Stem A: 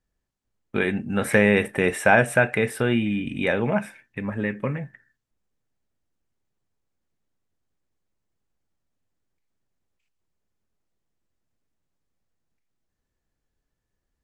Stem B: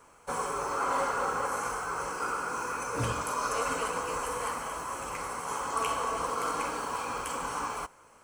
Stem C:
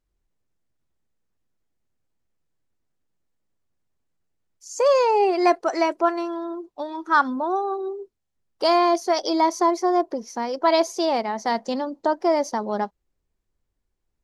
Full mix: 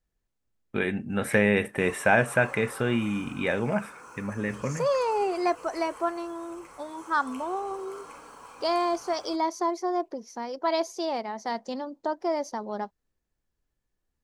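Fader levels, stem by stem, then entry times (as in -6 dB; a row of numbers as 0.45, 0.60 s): -4.0, -13.5, -7.5 dB; 0.00, 1.50, 0.00 s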